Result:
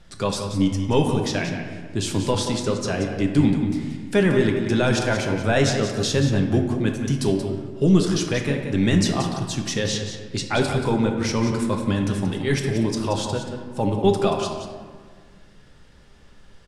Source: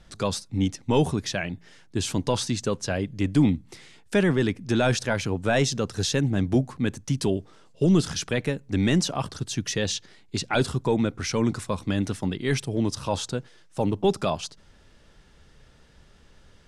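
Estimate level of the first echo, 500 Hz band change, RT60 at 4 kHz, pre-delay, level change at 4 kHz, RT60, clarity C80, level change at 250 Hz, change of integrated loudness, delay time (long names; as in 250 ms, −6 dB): −9.0 dB, +4.0 dB, 0.90 s, 5 ms, +2.5 dB, 1.7 s, 5.0 dB, +4.0 dB, +3.5 dB, 180 ms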